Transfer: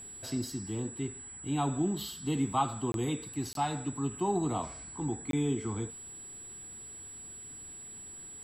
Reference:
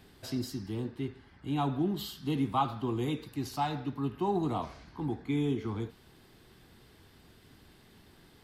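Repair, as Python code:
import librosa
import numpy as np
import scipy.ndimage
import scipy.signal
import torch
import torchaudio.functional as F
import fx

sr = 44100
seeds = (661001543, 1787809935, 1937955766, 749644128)

y = fx.notch(x, sr, hz=7800.0, q=30.0)
y = fx.fix_interpolate(y, sr, at_s=(2.92, 3.53, 5.31), length_ms=22.0)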